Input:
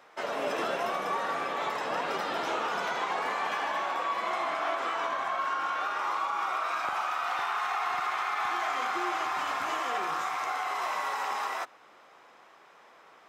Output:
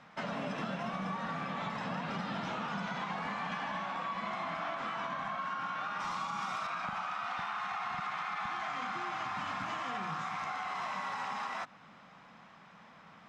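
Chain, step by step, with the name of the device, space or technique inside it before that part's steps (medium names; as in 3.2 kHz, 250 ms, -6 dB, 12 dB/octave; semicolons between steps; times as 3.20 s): jukebox (low-pass 5.6 kHz 12 dB/octave; resonant low shelf 270 Hz +11.5 dB, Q 3; compression 4:1, threshold -35 dBFS, peak gain reduction 8.5 dB); 6.00–6.67 s: tone controls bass +7 dB, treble +13 dB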